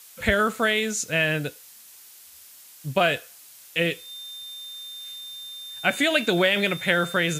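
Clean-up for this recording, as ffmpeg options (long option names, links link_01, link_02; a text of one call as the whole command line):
ffmpeg -i in.wav -af "bandreject=frequency=3600:width=30,afftdn=noise_reduction=21:noise_floor=-48" out.wav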